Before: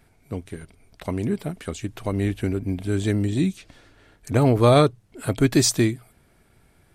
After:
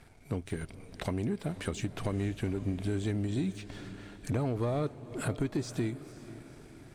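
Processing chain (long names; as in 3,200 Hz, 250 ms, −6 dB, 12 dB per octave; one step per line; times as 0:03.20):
de-essing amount 85%
low-pass filter 10,000 Hz 12 dB per octave
downward compressor 6 to 1, threshold −33 dBFS, peak gain reduction 18 dB
leveller curve on the samples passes 1
feedback delay with all-pass diffusion 494 ms, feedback 54%, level −15 dB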